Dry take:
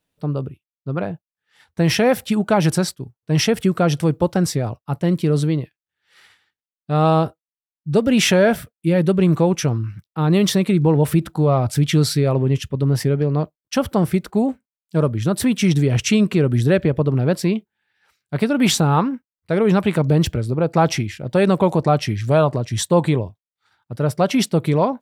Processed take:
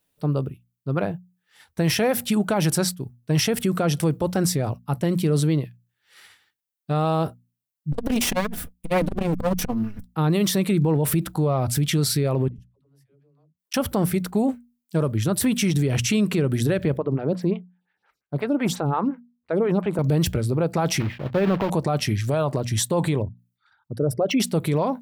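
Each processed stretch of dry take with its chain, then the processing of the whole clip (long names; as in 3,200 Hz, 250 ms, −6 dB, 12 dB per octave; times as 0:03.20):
0:07.92–0:10.06: lower of the sound and its delayed copy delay 4.1 ms + low-shelf EQ 140 Hz +8.5 dB + saturating transformer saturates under 230 Hz
0:12.48–0:13.74: gate with flip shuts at −26 dBFS, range −42 dB + all-pass dispersion lows, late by 108 ms, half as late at 300 Hz
0:16.97–0:19.99: low-pass filter 1,900 Hz 6 dB per octave + phaser with staggered stages 5.7 Hz
0:21.00–0:21.71: one scale factor per block 3 bits + high-frequency loss of the air 370 metres
0:23.22–0:24.40: spectral envelope exaggerated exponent 2 + de-essing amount 60%
whole clip: high-shelf EQ 9,000 Hz +12 dB; mains-hum notches 60/120/180/240 Hz; brickwall limiter −13.5 dBFS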